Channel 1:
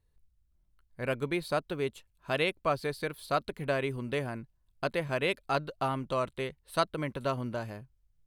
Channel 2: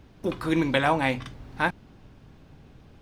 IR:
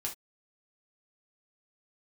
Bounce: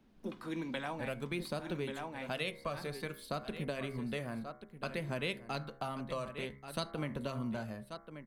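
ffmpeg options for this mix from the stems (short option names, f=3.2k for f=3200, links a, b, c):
-filter_complex "[0:a]bandreject=f=67.73:t=h:w=4,bandreject=f=135.46:t=h:w=4,bandreject=f=203.19:t=h:w=4,bandreject=f=270.92:t=h:w=4,bandreject=f=338.65:t=h:w=4,bandreject=f=406.38:t=h:w=4,bandreject=f=474.11:t=h:w=4,bandreject=f=541.84:t=h:w=4,bandreject=f=609.57:t=h:w=4,bandreject=f=677.3:t=h:w=4,bandreject=f=745.03:t=h:w=4,bandreject=f=812.76:t=h:w=4,bandreject=f=880.49:t=h:w=4,bandreject=f=948.22:t=h:w=4,bandreject=f=1.01595k:t=h:w=4,bandreject=f=1.08368k:t=h:w=4,bandreject=f=1.15141k:t=h:w=4,bandreject=f=1.21914k:t=h:w=4,bandreject=f=1.28687k:t=h:w=4,bandreject=f=1.3546k:t=h:w=4,bandreject=f=1.42233k:t=h:w=4,bandreject=f=1.49006k:t=h:w=4,bandreject=f=1.55779k:t=h:w=4,bandreject=f=1.62552k:t=h:w=4,bandreject=f=1.69325k:t=h:w=4,bandreject=f=1.76098k:t=h:w=4,bandreject=f=1.82871k:t=h:w=4,bandreject=f=1.89644k:t=h:w=4,bandreject=f=1.96417k:t=h:w=4,bandreject=f=2.0319k:t=h:w=4,bandreject=f=2.09963k:t=h:w=4,bandreject=f=2.16736k:t=h:w=4,bandreject=f=2.23509k:t=h:w=4,aphaser=in_gain=1:out_gain=1:delay=1.8:decay=0.33:speed=0.57:type=sinusoidal,volume=-5.5dB,asplit=4[a][b][c][d];[b]volume=-14dB[e];[c]volume=-13dB[f];[1:a]highpass=f=150:w=0.5412,highpass=f=150:w=1.3066,volume=-14dB,asplit=2[g][h];[h]volume=-5.5dB[i];[d]apad=whole_len=133113[j];[g][j]sidechaincompress=threshold=-43dB:ratio=8:attack=33:release=390[k];[2:a]atrim=start_sample=2205[l];[e][l]afir=irnorm=-1:irlink=0[m];[f][i]amix=inputs=2:normalize=0,aecho=0:1:1134:1[n];[a][k][m][n]amix=inputs=4:normalize=0,equalizer=f=220:w=7:g=12,acrossover=split=170|3000[o][p][q];[p]acompressor=threshold=-36dB:ratio=6[r];[o][r][q]amix=inputs=3:normalize=0"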